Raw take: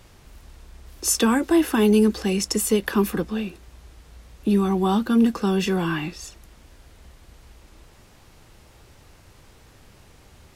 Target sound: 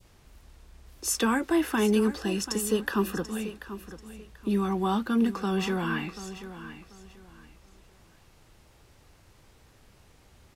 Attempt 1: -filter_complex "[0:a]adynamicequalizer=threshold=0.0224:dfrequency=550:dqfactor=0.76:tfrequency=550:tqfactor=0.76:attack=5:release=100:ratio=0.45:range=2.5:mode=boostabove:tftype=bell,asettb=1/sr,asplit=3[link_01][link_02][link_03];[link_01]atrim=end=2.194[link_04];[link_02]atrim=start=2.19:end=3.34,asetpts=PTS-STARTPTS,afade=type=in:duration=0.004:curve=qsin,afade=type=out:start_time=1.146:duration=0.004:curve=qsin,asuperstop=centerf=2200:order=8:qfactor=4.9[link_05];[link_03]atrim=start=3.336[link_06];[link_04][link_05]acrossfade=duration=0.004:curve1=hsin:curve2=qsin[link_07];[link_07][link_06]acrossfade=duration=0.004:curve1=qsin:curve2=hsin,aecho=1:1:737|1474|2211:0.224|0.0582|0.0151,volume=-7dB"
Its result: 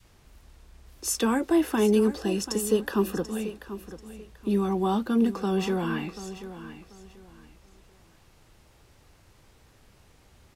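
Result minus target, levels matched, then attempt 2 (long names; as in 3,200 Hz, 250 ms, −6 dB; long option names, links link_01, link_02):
2,000 Hz band −5.0 dB
-filter_complex "[0:a]adynamicequalizer=threshold=0.0224:dfrequency=1500:dqfactor=0.76:tfrequency=1500:tqfactor=0.76:attack=5:release=100:ratio=0.45:range=2.5:mode=boostabove:tftype=bell,asettb=1/sr,asplit=3[link_01][link_02][link_03];[link_01]atrim=end=2.194[link_04];[link_02]atrim=start=2.19:end=3.34,asetpts=PTS-STARTPTS,afade=type=in:duration=0.004:curve=qsin,afade=type=out:start_time=1.146:duration=0.004:curve=qsin,asuperstop=centerf=2200:order=8:qfactor=4.9[link_05];[link_03]atrim=start=3.336[link_06];[link_04][link_05]acrossfade=duration=0.004:curve1=hsin:curve2=qsin[link_07];[link_07][link_06]acrossfade=duration=0.004:curve1=qsin:curve2=hsin,aecho=1:1:737|1474|2211:0.224|0.0582|0.0151,volume=-7dB"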